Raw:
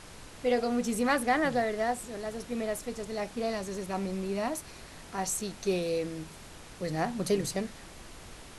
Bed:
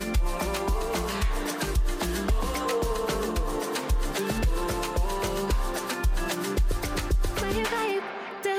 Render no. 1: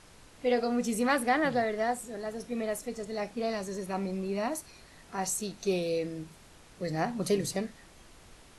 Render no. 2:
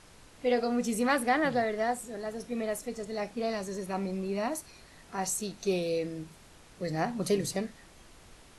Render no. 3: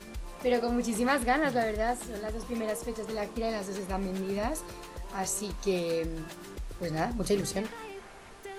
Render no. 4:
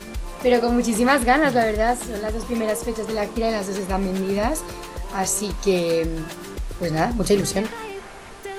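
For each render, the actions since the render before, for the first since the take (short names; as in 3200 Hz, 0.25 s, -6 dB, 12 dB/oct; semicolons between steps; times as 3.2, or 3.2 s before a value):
noise print and reduce 7 dB
nothing audible
add bed -15.5 dB
gain +9.5 dB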